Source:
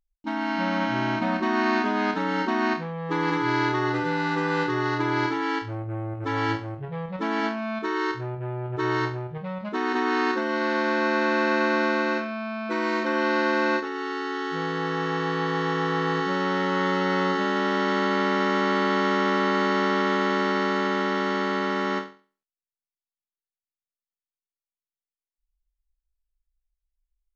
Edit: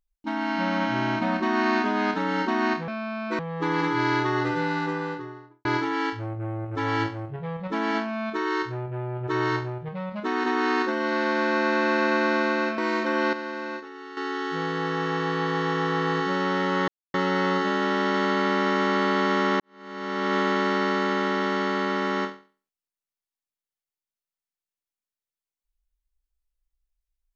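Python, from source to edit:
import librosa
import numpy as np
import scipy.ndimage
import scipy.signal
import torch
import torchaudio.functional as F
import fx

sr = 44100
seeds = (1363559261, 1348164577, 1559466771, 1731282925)

y = fx.studio_fade_out(x, sr, start_s=4.06, length_s=1.08)
y = fx.edit(y, sr, fx.move(start_s=12.27, length_s=0.51, to_s=2.88),
    fx.clip_gain(start_s=13.33, length_s=0.84, db=-10.0),
    fx.insert_silence(at_s=16.88, length_s=0.26),
    fx.fade_in_span(start_s=19.34, length_s=0.75, curve='qua'), tone=tone)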